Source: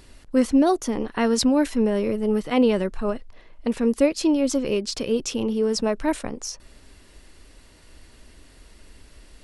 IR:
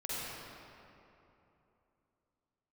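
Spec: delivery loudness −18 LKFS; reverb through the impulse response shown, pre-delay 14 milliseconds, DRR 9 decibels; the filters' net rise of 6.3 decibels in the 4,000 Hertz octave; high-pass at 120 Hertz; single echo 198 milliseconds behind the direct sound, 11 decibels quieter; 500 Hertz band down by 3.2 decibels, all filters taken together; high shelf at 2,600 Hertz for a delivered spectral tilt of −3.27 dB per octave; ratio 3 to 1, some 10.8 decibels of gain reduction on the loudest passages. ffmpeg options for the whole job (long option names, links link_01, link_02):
-filter_complex "[0:a]highpass=120,equalizer=frequency=500:width_type=o:gain=-4,highshelf=frequency=2600:gain=3.5,equalizer=frequency=4000:width_type=o:gain=5,acompressor=threshold=-30dB:ratio=3,aecho=1:1:198:0.282,asplit=2[link_01][link_02];[1:a]atrim=start_sample=2205,adelay=14[link_03];[link_02][link_03]afir=irnorm=-1:irlink=0,volume=-13dB[link_04];[link_01][link_04]amix=inputs=2:normalize=0,volume=13dB"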